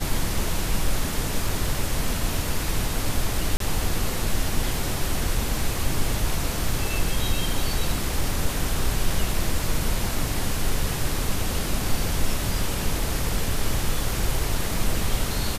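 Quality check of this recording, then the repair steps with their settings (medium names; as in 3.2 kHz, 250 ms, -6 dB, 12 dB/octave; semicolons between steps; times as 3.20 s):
1.49 s: dropout 2.8 ms
3.57–3.60 s: dropout 33 ms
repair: interpolate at 1.49 s, 2.8 ms; interpolate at 3.57 s, 33 ms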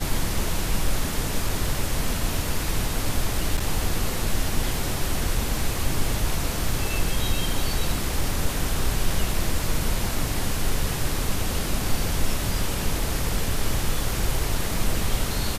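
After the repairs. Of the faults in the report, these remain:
nothing left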